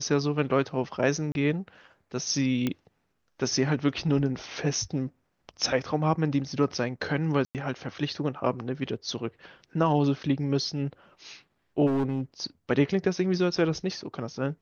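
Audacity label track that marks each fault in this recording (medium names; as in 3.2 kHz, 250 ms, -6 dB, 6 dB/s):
1.320000	1.350000	dropout 31 ms
2.670000	2.670000	pop -14 dBFS
7.450000	7.550000	dropout 98 ms
11.860000	12.210000	clipped -22.5 dBFS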